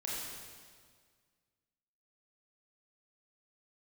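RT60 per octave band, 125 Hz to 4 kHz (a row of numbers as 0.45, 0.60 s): 2.1, 1.9, 1.8, 1.8, 1.6, 1.6 s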